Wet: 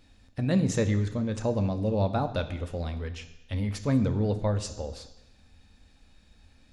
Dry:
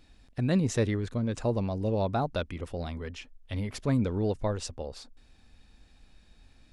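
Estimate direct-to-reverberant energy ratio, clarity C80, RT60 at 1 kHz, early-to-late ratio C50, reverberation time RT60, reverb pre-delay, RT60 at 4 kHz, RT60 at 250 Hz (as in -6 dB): 8.0 dB, 14.5 dB, 1.1 s, 12.5 dB, 1.0 s, 3 ms, 1.1 s, 1.0 s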